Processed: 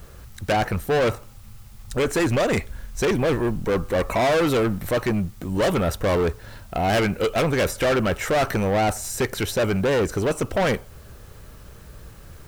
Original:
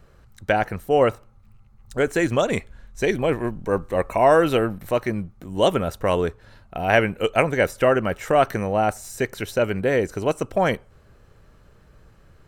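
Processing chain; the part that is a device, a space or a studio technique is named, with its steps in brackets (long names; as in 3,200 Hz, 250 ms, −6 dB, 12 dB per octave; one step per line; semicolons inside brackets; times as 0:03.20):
open-reel tape (soft clipping −25 dBFS, distortion −5 dB; parametric band 66 Hz +4 dB 0.94 octaves; white noise bed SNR 32 dB)
level +7.5 dB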